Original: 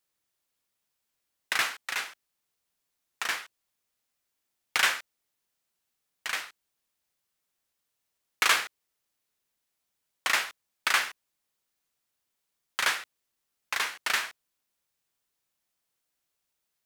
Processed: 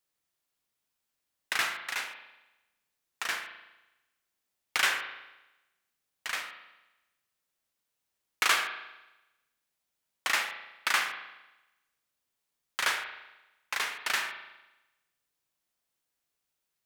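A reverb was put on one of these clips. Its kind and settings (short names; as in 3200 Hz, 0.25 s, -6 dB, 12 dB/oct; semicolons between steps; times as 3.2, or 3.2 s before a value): spring tank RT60 1 s, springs 37 ms, chirp 35 ms, DRR 6 dB; gain -2.5 dB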